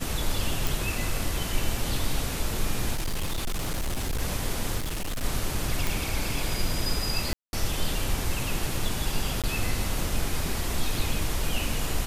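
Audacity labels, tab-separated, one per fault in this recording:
0.670000	0.670000	pop
2.940000	4.220000	clipped -24.5 dBFS
4.780000	5.230000	clipped -27 dBFS
5.870000	5.870000	pop
7.330000	7.530000	gap 0.201 s
9.420000	9.440000	gap 17 ms

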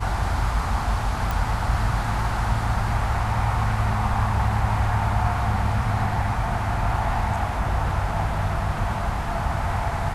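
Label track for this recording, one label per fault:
1.310000	1.310000	pop

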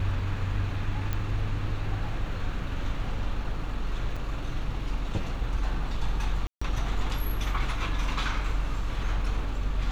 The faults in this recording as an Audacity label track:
1.130000	1.130000	pop -17 dBFS
4.160000	4.160000	gap 4.9 ms
6.470000	6.620000	gap 0.145 s

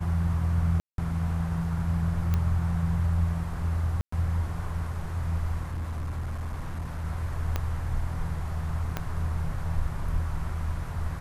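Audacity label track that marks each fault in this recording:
0.800000	0.980000	gap 0.182 s
2.340000	2.340000	pop -15 dBFS
4.010000	4.120000	gap 0.114 s
5.630000	7.050000	clipped -28.5 dBFS
7.560000	7.560000	pop -14 dBFS
8.970000	8.970000	pop -15 dBFS

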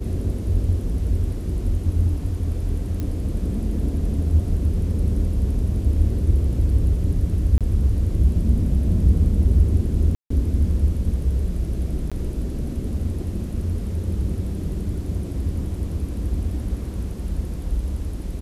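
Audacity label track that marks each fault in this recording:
3.000000	3.000000	pop -16 dBFS
7.580000	7.610000	gap 27 ms
10.150000	10.300000	gap 0.154 s
12.100000	12.120000	gap 16 ms

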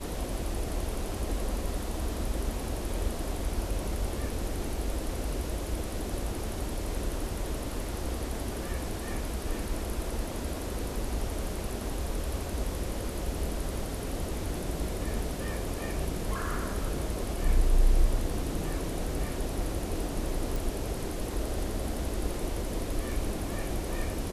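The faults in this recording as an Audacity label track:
20.560000	20.560000	pop

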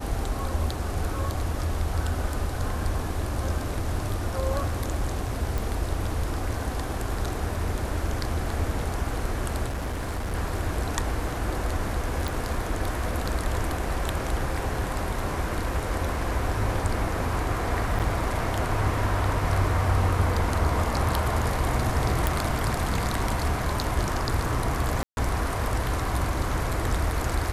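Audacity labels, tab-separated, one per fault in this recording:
5.580000	5.580000	pop
9.670000	10.350000	clipped -26 dBFS
12.280000	12.280000	pop
17.990000	18.000000	gap 7.5 ms
22.270000	22.270000	pop
25.030000	25.170000	gap 0.141 s

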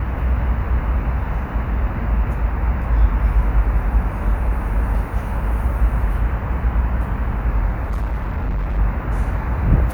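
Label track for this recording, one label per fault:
7.830000	8.790000	clipped -18 dBFS

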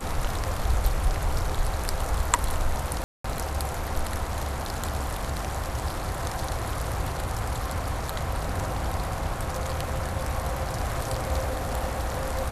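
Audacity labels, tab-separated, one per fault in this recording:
3.040000	3.240000	gap 0.204 s

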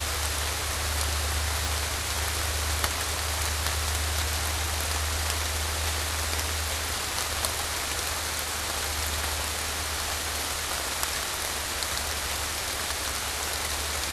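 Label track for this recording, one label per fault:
1.650000	1.650000	pop

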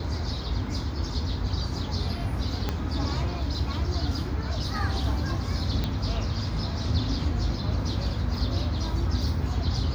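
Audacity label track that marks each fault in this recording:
2.690000	2.690000	pop -14 dBFS
5.840000	5.840000	pop -15 dBFS

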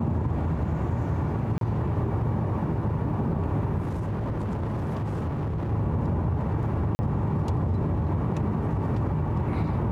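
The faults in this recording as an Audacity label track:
1.580000	1.610000	gap 32 ms
3.820000	5.720000	clipped -25.5 dBFS
6.950000	6.990000	gap 40 ms

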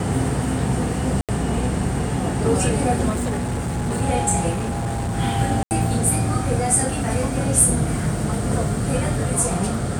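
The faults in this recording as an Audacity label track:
1.210000	1.290000	gap 77 ms
3.090000	4.020000	clipped -20 dBFS
4.500000	5.150000	clipped -21 dBFS
5.630000	5.710000	gap 79 ms

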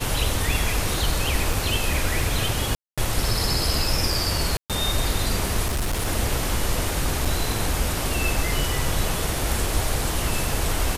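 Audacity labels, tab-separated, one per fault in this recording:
1.530000	1.530000	gap 2.9 ms
2.750000	2.980000	gap 0.226 s
4.570000	4.700000	gap 0.127 s
5.660000	6.080000	clipped -20.5 dBFS
7.250000	7.260000	gap 5.2 ms

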